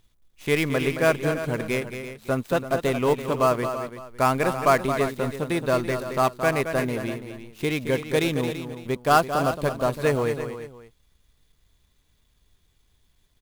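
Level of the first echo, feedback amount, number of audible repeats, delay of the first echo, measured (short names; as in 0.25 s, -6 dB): -9.0 dB, no steady repeat, 3, 0.221 s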